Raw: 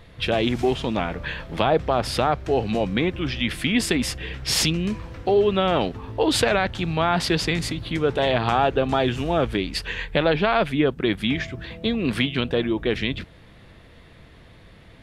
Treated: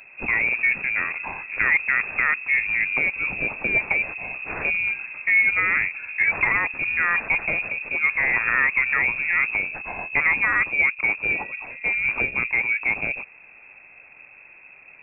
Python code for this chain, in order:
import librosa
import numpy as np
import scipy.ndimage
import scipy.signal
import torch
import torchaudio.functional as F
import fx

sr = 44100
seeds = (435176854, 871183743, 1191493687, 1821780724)

y = np.r_[np.sort(x[:len(x) // 8 * 8].reshape(-1, 8), axis=1).ravel(), x[len(x) // 8 * 8:]]
y = fx.freq_invert(y, sr, carrier_hz=2600)